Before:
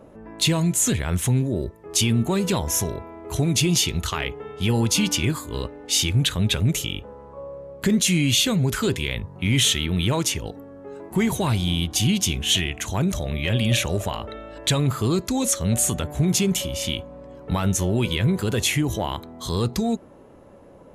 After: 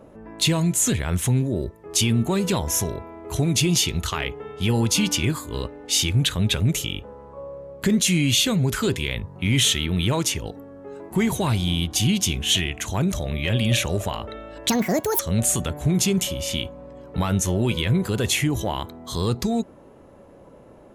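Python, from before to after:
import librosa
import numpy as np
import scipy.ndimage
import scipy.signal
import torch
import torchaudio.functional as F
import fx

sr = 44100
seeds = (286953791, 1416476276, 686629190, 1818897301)

y = fx.edit(x, sr, fx.speed_span(start_s=14.69, length_s=0.84, speed=1.67), tone=tone)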